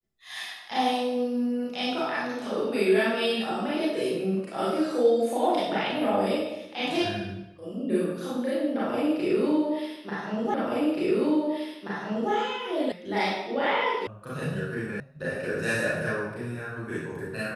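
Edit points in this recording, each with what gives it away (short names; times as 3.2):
10.54 repeat of the last 1.78 s
12.92 sound cut off
14.07 sound cut off
15 sound cut off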